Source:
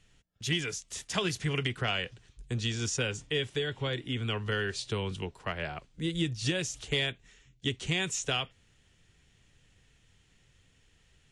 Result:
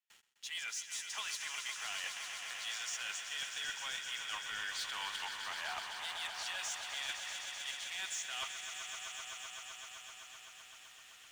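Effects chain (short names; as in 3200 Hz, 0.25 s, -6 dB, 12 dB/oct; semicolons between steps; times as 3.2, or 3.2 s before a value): steep high-pass 810 Hz 36 dB/oct; gate with hold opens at -60 dBFS; reverse; compressor 12:1, threshold -48 dBFS, peak gain reduction 22.5 dB; reverse; sample leveller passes 3; swelling echo 0.128 s, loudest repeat 5, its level -9.5 dB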